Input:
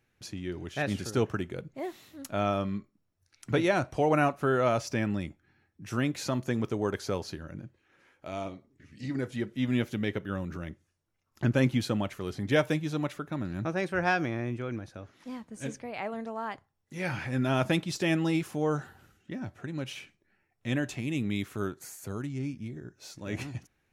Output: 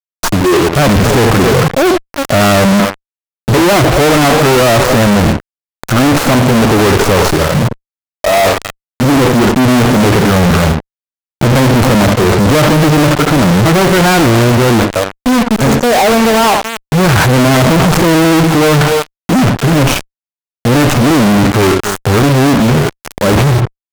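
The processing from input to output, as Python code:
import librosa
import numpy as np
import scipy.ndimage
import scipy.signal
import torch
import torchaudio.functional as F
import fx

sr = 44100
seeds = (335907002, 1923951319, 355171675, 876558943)

y = fx.tracing_dist(x, sr, depth_ms=0.25)
y = fx.band_shelf(y, sr, hz=3000.0, db=-11.5, octaves=1.7)
y = y + 10.0 ** (-19.5 / 20.0) * np.pad(y, (int(276 * sr / 1000.0), 0))[:len(y)]
y = fx.noise_reduce_blind(y, sr, reduce_db=14)
y = fx.spacing_loss(y, sr, db_at_10k=23)
y = np.where(np.abs(y) >= 10.0 ** (-50.5 / 20.0), y, 0.0)
y = fx.leveller(y, sr, passes=5)
y = fx.echo_feedback(y, sr, ms=73, feedback_pct=35, wet_db=-22.0)
y = fx.fuzz(y, sr, gain_db=51.0, gate_db=-46.0)
y = F.gain(torch.from_numpy(y), 6.0).numpy()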